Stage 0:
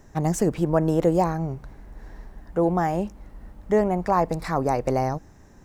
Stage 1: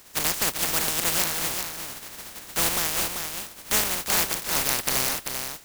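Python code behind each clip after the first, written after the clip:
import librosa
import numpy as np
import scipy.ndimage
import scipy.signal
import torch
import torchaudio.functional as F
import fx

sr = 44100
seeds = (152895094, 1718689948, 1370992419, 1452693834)

y = fx.spec_flatten(x, sr, power=0.12)
y = fx.rider(y, sr, range_db=10, speed_s=0.5)
y = y + 10.0 ** (-6.0 / 20.0) * np.pad(y, (int(390 * sr / 1000.0), 0))[:len(y)]
y = y * librosa.db_to_amplitude(-2.5)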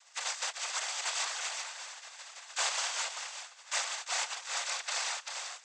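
y = fx.rider(x, sr, range_db=5, speed_s=2.0)
y = scipy.signal.sosfilt(scipy.signal.butter(6, 680.0, 'highpass', fs=sr, output='sos'), y)
y = fx.noise_vocoder(y, sr, seeds[0], bands=16)
y = y * librosa.db_to_amplitude(-6.5)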